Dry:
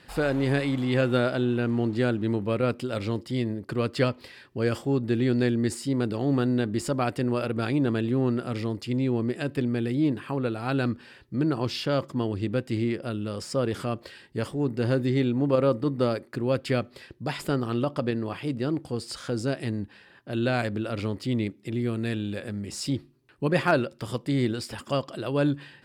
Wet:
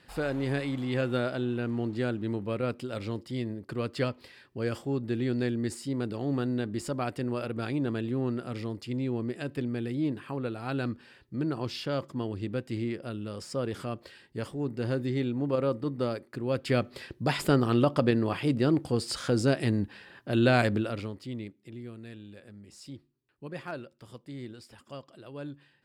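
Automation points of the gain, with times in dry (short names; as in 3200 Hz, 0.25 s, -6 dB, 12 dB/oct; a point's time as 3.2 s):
16.43 s -5.5 dB
16.97 s +3 dB
20.74 s +3 dB
21.12 s -9 dB
22.06 s -16 dB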